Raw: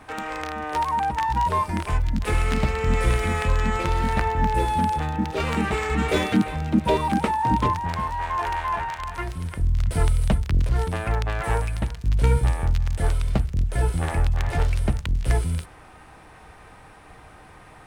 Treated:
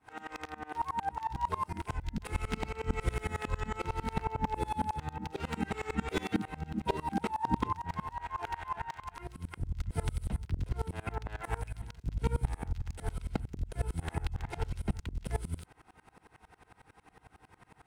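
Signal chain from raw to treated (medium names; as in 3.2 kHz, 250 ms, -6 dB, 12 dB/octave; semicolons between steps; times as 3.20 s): comb of notches 590 Hz; sawtooth tremolo in dB swelling 11 Hz, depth 26 dB; trim -3.5 dB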